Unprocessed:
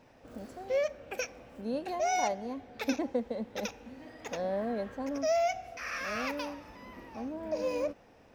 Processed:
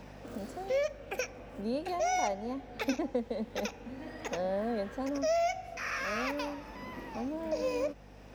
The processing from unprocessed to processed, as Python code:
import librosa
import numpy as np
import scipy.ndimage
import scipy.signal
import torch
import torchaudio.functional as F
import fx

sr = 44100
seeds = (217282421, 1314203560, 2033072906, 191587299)

y = fx.add_hum(x, sr, base_hz=50, snr_db=21)
y = fx.band_squash(y, sr, depth_pct=40)